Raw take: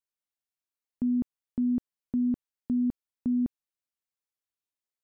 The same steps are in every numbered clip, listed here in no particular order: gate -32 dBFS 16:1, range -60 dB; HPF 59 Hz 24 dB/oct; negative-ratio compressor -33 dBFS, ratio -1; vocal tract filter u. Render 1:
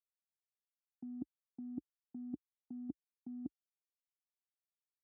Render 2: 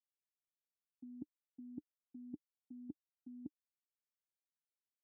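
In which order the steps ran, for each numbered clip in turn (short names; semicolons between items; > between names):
vocal tract filter > negative-ratio compressor > gate > HPF; negative-ratio compressor > HPF > gate > vocal tract filter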